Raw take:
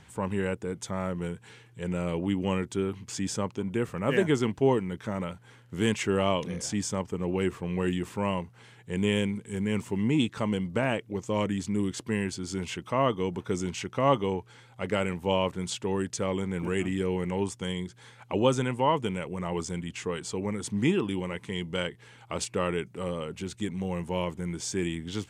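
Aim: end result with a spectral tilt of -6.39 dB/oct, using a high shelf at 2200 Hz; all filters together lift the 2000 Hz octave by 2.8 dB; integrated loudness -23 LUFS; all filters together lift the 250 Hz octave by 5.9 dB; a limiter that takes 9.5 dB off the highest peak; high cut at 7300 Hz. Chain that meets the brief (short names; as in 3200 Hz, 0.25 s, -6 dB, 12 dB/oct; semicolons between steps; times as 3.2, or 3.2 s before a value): LPF 7300 Hz; bell 250 Hz +8 dB; bell 2000 Hz +5.5 dB; high shelf 2200 Hz -4 dB; gain +5.5 dB; limiter -10.5 dBFS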